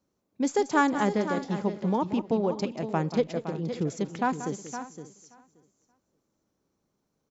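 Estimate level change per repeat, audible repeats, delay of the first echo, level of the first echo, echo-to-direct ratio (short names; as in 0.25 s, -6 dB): no steady repeat, 5, 0.183 s, -12.5 dB, -8.0 dB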